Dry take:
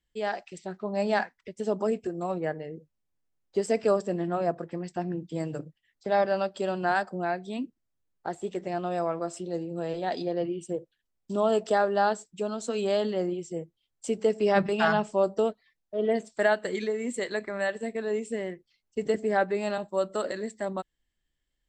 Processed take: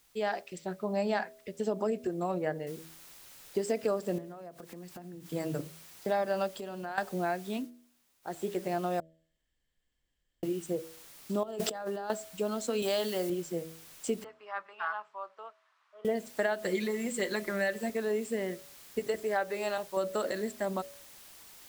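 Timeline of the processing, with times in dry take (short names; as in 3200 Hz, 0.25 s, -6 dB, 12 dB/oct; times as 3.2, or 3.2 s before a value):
2.67 noise floor step -66 dB -53 dB
4.18–5.26 compressor 20:1, threshold -41 dBFS
6.48–6.98 compressor 3:1, threshold -39 dBFS
7.55–8.38 dip -19 dB, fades 0.16 s
9–10.43 room tone
11.43–12.1 negative-ratio compressor -36 dBFS
12.82–13.3 tilt +2.5 dB/oct
14.24–16.05 ladder band-pass 1300 Hz, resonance 55%
16.58–17.9 comb 5.6 ms
18.99–19.97 bell 220 Hz -11 dB 1.4 oct
whole clip: de-hum 80.97 Hz, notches 8; compressor, threshold -26 dBFS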